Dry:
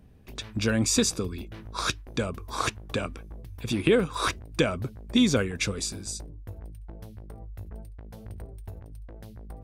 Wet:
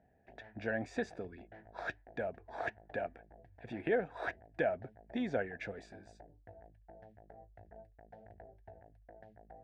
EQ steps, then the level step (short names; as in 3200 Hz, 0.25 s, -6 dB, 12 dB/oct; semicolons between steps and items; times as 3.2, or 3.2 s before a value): double band-pass 1100 Hz, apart 1.3 oct; tilt -3.5 dB/oct; bell 910 Hz +7.5 dB 0.32 oct; +1.0 dB